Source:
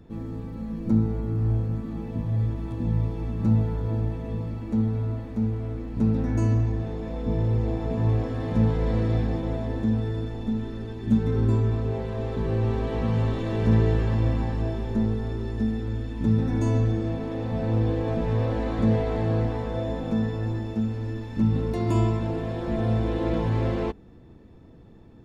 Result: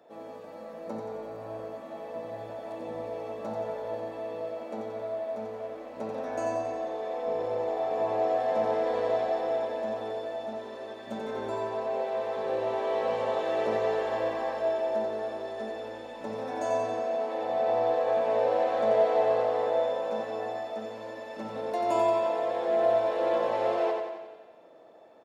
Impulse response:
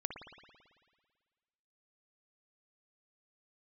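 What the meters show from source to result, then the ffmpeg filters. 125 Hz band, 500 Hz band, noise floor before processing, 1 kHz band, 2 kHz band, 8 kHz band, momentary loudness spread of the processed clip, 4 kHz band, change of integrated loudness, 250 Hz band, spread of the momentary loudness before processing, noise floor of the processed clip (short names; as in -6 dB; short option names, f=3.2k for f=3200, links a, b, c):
-28.5 dB, +4.5 dB, -48 dBFS, +7.0 dB, +0.5 dB, n/a, 14 LU, 0.0 dB, -4.0 dB, -15.0 dB, 8 LU, -45 dBFS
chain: -filter_complex "[0:a]highpass=f=620:t=q:w=4.9,aecho=1:1:89|178|267|356|445|534|623|712:0.596|0.351|0.207|0.122|0.0722|0.0426|0.0251|0.0148,asplit=2[a][b];[1:a]atrim=start_sample=2205[c];[b][c]afir=irnorm=-1:irlink=0,volume=-2.5dB[d];[a][d]amix=inputs=2:normalize=0,volume=-6.5dB"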